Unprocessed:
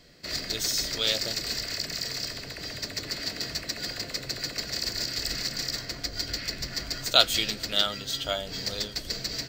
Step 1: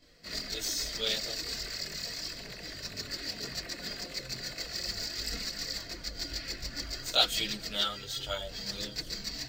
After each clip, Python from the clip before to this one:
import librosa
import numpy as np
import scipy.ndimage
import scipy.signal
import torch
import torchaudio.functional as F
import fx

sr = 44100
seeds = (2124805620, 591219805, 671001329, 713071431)

y = fx.chorus_voices(x, sr, voices=4, hz=0.35, base_ms=22, depth_ms=3.3, mix_pct=65)
y = y * librosa.db_to_amplitude(-2.5)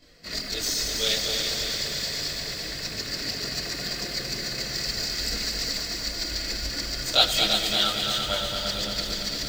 y = fx.echo_heads(x, sr, ms=113, heads='second and third', feedback_pct=67, wet_db=-6.5)
y = fx.echo_crushed(y, sr, ms=98, feedback_pct=80, bits=7, wet_db=-14)
y = y * librosa.db_to_amplitude(5.5)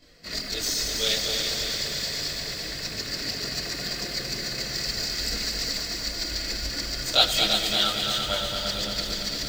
y = x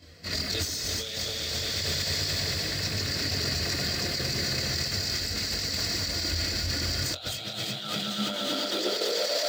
y = fx.over_compress(x, sr, threshold_db=-31.0, ratio=-1.0)
y = fx.filter_sweep_highpass(y, sr, from_hz=83.0, to_hz=620.0, start_s=7.21, end_s=9.46, q=6.7)